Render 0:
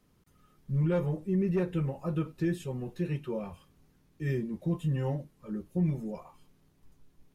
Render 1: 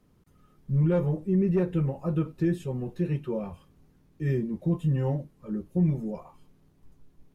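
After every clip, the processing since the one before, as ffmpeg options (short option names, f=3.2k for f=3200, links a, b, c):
-af "tiltshelf=f=1.2k:g=3.5,volume=1dB"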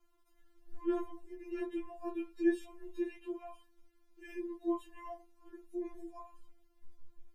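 -af "equalizer=f=240:t=o:w=0.71:g=-14.5,afftfilt=real='re*4*eq(mod(b,16),0)':imag='im*4*eq(mod(b,16),0)':win_size=2048:overlap=0.75,volume=-3dB"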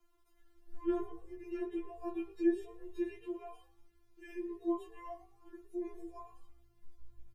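-filter_complex "[0:a]acrossover=split=100|1100[a][b][c];[c]alimiter=level_in=24.5dB:limit=-24dB:level=0:latency=1:release=483,volume=-24.5dB[d];[a][b][d]amix=inputs=3:normalize=0,asplit=4[e][f][g][h];[f]adelay=113,afreqshift=54,volume=-19.5dB[i];[g]adelay=226,afreqshift=108,volume=-29.7dB[j];[h]adelay=339,afreqshift=162,volume=-39.8dB[k];[e][i][j][k]amix=inputs=4:normalize=0"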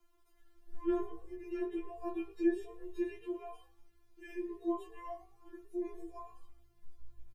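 -filter_complex "[0:a]asplit=2[a][b];[b]adelay=22,volume=-12dB[c];[a][c]amix=inputs=2:normalize=0,volume=1dB"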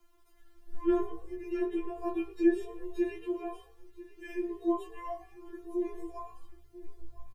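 -af "aecho=1:1:992:0.126,volume=5.5dB"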